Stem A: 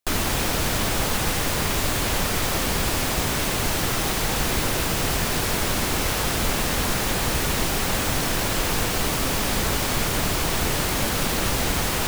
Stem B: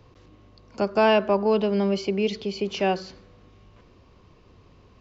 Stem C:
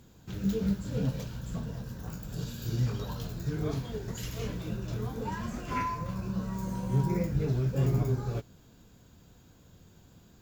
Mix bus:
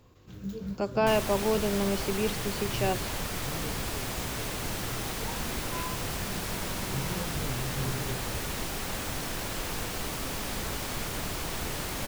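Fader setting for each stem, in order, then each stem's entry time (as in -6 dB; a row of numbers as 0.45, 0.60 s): -10.5, -6.0, -7.5 dB; 1.00, 0.00, 0.00 s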